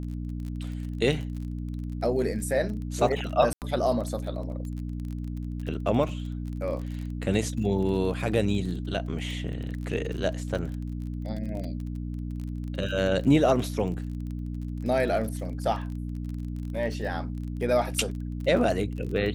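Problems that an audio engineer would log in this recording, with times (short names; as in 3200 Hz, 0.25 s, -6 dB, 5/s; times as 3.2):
crackle 30/s -34 dBFS
hum 60 Hz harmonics 5 -33 dBFS
3.53–3.62 gap 88 ms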